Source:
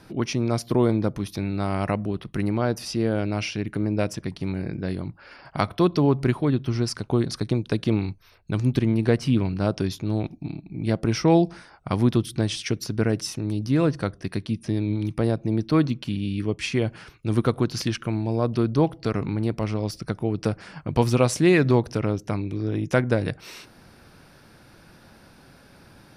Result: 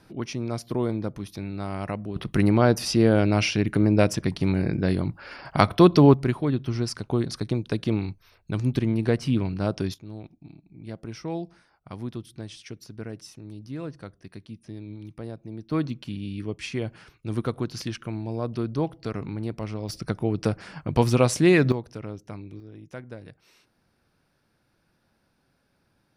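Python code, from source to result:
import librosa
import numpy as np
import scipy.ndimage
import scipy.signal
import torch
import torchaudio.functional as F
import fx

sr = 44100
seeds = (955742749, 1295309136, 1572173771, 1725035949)

y = fx.gain(x, sr, db=fx.steps((0.0, -6.0), (2.16, 5.0), (6.14, -2.5), (9.94, -14.0), (15.71, -6.0), (19.89, 0.0), (21.72, -11.5), (22.6, -18.5)))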